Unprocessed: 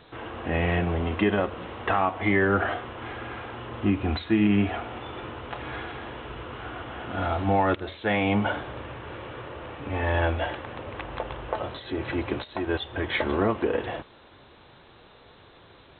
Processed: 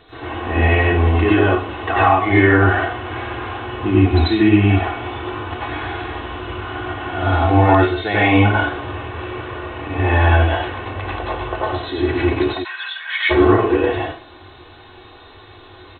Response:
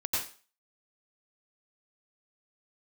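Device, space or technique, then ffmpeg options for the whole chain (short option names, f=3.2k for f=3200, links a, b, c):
microphone above a desk: -filter_complex "[0:a]aecho=1:1:2.7:0.6[a];[1:a]atrim=start_sample=2205[b];[a][b]afir=irnorm=-1:irlink=0,asplit=3[c][d][e];[c]afade=t=out:st=12.63:d=0.02[f];[d]highpass=f=1.3k:w=0.5412,highpass=f=1.3k:w=1.3066,afade=t=in:st=12.63:d=0.02,afade=t=out:st=13.29:d=0.02[g];[e]afade=t=in:st=13.29:d=0.02[h];[f][g][h]amix=inputs=3:normalize=0,volume=2.5dB"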